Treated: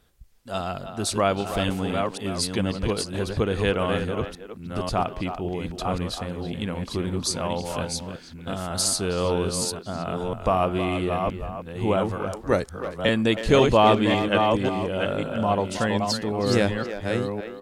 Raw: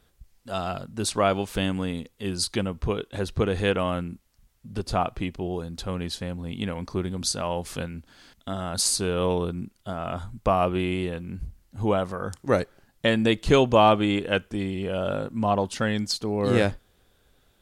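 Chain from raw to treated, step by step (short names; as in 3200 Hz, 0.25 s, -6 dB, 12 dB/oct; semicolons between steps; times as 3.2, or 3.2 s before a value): reverse delay 0.544 s, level -4.5 dB; 12.61–13.09 frequency shift -14 Hz; speakerphone echo 0.32 s, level -9 dB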